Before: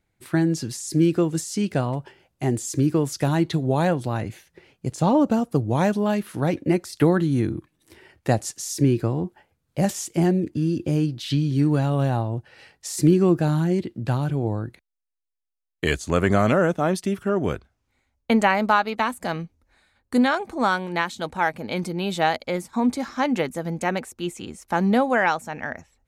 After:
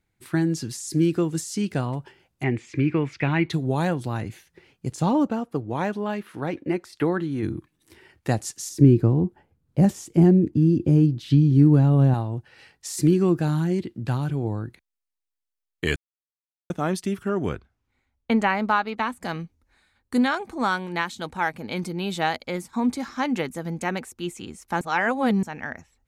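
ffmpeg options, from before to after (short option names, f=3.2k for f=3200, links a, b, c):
-filter_complex "[0:a]asettb=1/sr,asplit=3[a][b][c];[a]atrim=end=2.434[d];[b]atrim=start=2.43:end=3.5,asetpts=PTS-STARTPTS,afade=t=in:d=0.004:c=qsin,afade=t=out:st=1.066:d=0.004:c=qsin,lowpass=f=2.3k:t=q:w=6.3[e];[c]atrim=start=3.496[f];[d][e]acrossfade=d=0.004:c1=hsin:c2=qsin[g];[g][f]acrossfade=d=0.004:c1=qsin:c2=hsin,asplit=3[h][i][j];[h]afade=t=out:st=5.26:d=0.02[k];[i]bass=f=250:g=-8,treble=f=4k:g=-11,afade=t=in:st=5.26:d=0.02,afade=t=out:st=7.42:d=0.02[l];[j]afade=t=in:st=7.42:d=0.02[m];[k][l][m]amix=inputs=3:normalize=0,asettb=1/sr,asplit=3[n][o][p];[n]atrim=end=8.694[q];[o]atrim=start=8.69:end=12.14,asetpts=PTS-STARTPTS,afade=t=in:d=0.004:c=qsin,afade=t=out:st=3.446:d=0.004:c=qsin,tiltshelf=f=880:g=7.5[r];[p]atrim=start=12.136[s];[q][r]acrossfade=d=0.004:c1=hsin:c2=qsin[t];[t][s]acrossfade=d=0.004:c1=qsin:c2=hsin,asettb=1/sr,asplit=3[u][v][w];[u]atrim=end=17.494[x];[v]atrim=start=17.49:end=19.23,asetpts=PTS-STARTPTS,afade=t=in:d=0.004:c=qsin,afade=t=out:st=1.736:d=0.004:c=qsin,highshelf=f=5.8k:g=-11[y];[w]atrim=start=19.226[z];[x][y]acrossfade=d=0.004:c1=hsin:c2=qsin[aa];[aa][z]acrossfade=d=0.004:c1=qsin:c2=hsin,asplit=5[ab][ac][ad][ae][af];[ab]atrim=end=15.96,asetpts=PTS-STARTPTS,afade=t=out:st=15.956:d=0.004:c=hsin[ag];[ac]atrim=start=15.96:end=16.7,asetpts=PTS-STARTPTS,volume=0[ah];[ad]atrim=start=16.7:end=24.812,asetpts=PTS-STARTPTS,afade=t=in:d=0.004:c=hsin[ai];[ae]atrim=start=24.808:end=25.432,asetpts=PTS-STARTPTS,areverse[aj];[af]atrim=start=25.428[ak];[ag][ah][ai]concat=n=3:v=0:a=1[al];[al][aj]acrossfade=d=0.004:c1=hsin:c2=hsin[am];[am][ak]acrossfade=d=0.004:c1=hsin:c2=hsin,equalizer=f=600:w=2.3:g=-5,volume=-1.5dB"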